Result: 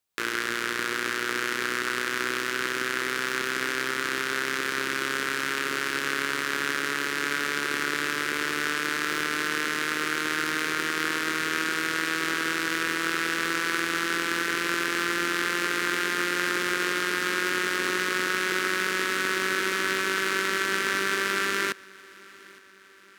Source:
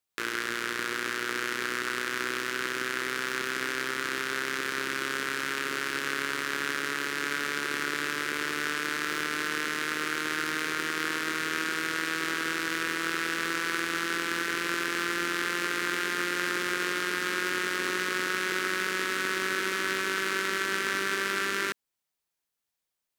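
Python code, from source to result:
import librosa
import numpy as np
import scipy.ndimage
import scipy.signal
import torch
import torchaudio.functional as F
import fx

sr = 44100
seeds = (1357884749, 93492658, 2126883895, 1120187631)

p1 = x + fx.echo_feedback(x, sr, ms=862, feedback_pct=57, wet_db=-23.5, dry=0)
y = p1 * 10.0 ** (3.0 / 20.0)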